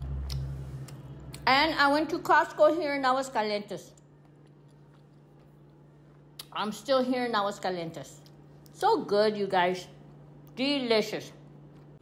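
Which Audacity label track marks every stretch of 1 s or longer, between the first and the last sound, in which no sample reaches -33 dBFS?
3.760000	6.400000	silence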